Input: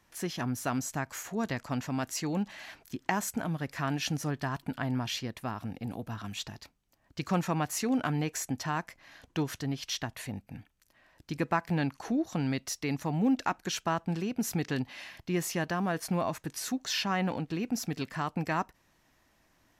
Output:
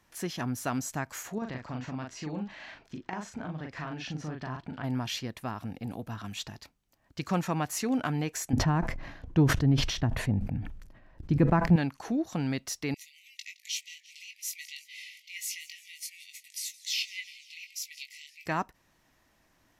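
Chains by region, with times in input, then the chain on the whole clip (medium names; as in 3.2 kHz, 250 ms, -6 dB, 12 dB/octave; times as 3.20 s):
1.38–4.84 s: compression 3:1, threshold -35 dBFS + distance through air 140 m + doubling 39 ms -3.5 dB
8.53–11.76 s: tilt EQ -4 dB/octave + decay stretcher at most 58 dB/s
12.94–18.46 s: brick-wall FIR high-pass 1.9 kHz + doubling 20 ms -6 dB + modulated delay 172 ms, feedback 68%, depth 153 cents, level -19.5 dB
whole clip: none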